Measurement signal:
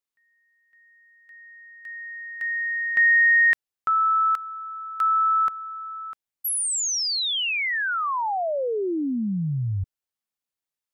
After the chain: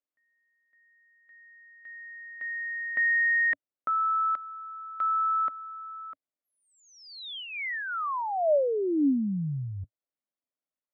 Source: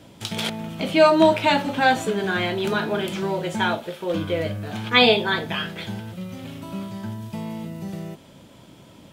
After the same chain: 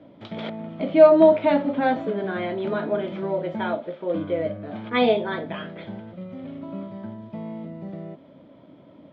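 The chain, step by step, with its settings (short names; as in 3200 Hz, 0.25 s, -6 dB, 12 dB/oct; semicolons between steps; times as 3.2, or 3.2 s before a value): speaker cabinet 100–2900 Hz, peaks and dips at 110 Hz -4 dB, 280 Hz +8 dB, 600 Hz +9 dB, 850 Hz -3 dB, 1600 Hz -5 dB, 2700 Hz -10 dB; gain -4 dB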